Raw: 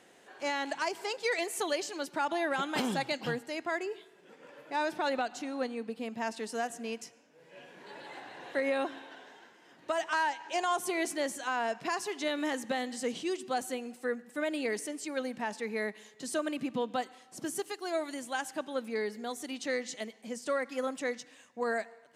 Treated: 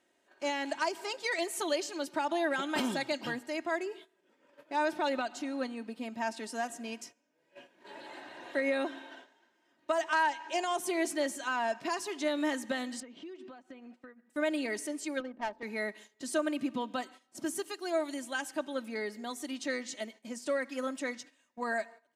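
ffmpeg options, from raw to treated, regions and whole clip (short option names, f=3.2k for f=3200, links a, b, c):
-filter_complex "[0:a]asettb=1/sr,asplit=3[a][b][c];[a]atrim=end=13.004[d];[b]atrim=start=13:end=14.3,asetpts=PTS-STARTPTS,afade=t=in:d=0.004:c=qsin,afade=t=out:st=1.296:d=0.004:c=qsin,highpass=130,lowpass=2.7k,acompressor=threshold=-44dB:ratio=8:attack=3.2:release=140:knee=1:detection=peak[e];[c]atrim=start=14.296[f];[d][e]acrossfade=d=0.004:c1=hsin:c2=qsin[g];[g][f]acrossfade=d=0.004:c1=qsin:c2=hsin,asettb=1/sr,asplit=3[h][i][j];[h]atrim=end=15.204[k];[i]atrim=start=15.2:end=15.63,asetpts=PTS-STARTPTS,afade=t=in:d=0.004:c=qsin,afade=t=out:st=0.426:d=0.004:c=qsin,highpass=320,adynamicsmooth=sensitivity=4:basefreq=530[l];[j]atrim=start=15.626[m];[k][l]acrossfade=d=0.004:c1=hsin:c2=qsin[n];[n][m]acrossfade=d=0.004:c1=qsin:c2=hsin,aecho=1:1:3.2:0.55,agate=range=-13dB:threshold=-49dB:ratio=16:detection=peak,volume=-1.5dB"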